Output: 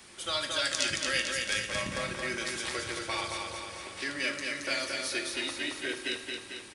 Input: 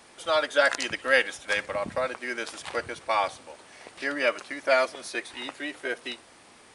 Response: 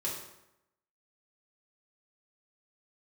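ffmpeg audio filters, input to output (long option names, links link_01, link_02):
-filter_complex "[0:a]equalizer=frequency=690:width_type=o:width=1.9:gain=-10,acrossover=split=220|3000[link_01][link_02][link_03];[link_02]acompressor=threshold=-39dB:ratio=6[link_04];[link_01][link_04][link_03]amix=inputs=3:normalize=0,aecho=1:1:223|446|669|892|1115|1338|1561|1784:0.631|0.372|0.22|0.13|0.0765|0.0451|0.0266|0.0157,asplit=2[link_05][link_06];[1:a]atrim=start_sample=2205[link_07];[link_06][link_07]afir=irnorm=-1:irlink=0,volume=-4.5dB[link_08];[link_05][link_08]amix=inputs=2:normalize=0"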